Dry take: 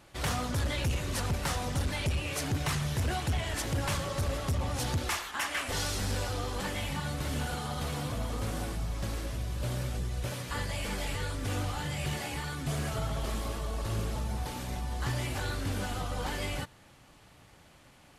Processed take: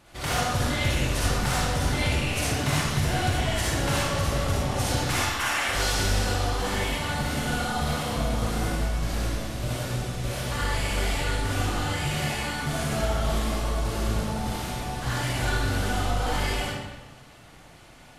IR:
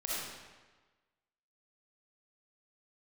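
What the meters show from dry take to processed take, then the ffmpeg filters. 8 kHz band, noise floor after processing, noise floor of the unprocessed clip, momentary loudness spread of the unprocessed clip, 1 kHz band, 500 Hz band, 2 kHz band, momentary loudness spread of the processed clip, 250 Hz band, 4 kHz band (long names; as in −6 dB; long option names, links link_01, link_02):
+7.0 dB, −49 dBFS, −58 dBFS, 4 LU, +8.0 dB, +7.5 dB, +8.5 dB, 5 LU, +7.0 dB, +7.5 dB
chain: -filter_complex "[1:a]atrim=start_sample=2205,asetrate=48510,aresample=44100[link_01];[0:a][link_01]afir=irnorm=-1:irlink=0,volume=4.5dB"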